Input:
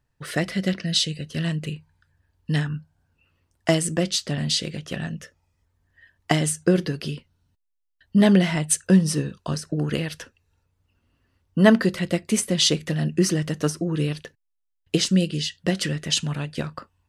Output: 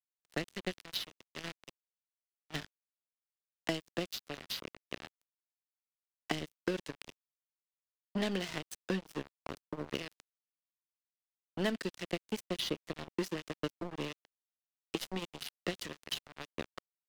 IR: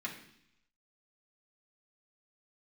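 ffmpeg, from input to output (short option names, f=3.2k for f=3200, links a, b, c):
-filter_complex "[0:a]asplit=3[a][b][c];[a]afade=t=out:st=14.21:d=0.02[d];[b]aeval=exprs='if(lt(val(0),0),0.447*val(0),val(0))':c=same,afade=t=in:st=14.21:d=0.02,afade=t=out:st=15.32:d=0.02[e];[c]afade=t=in:st=15.32:d=0.02[f];[d][e][f]amix=inputs=3:normalize=0,highpass=290,lowpass=4.1k,aeval=exprs='sgn(val(0))*max(abs(val(0))-0.0398,0)':c=same,acrossover=split=430|2500[g][h][i];[g]acompressor=threshold=-33dB:ratio=4[j];[h]acompressor=threshold=-41dB:ratio=4[k];[i]acompressor=threshold=-38dB:ratio=4[l];[j][k][l]amix=inputs=3:normalize=0,volume=-1dB"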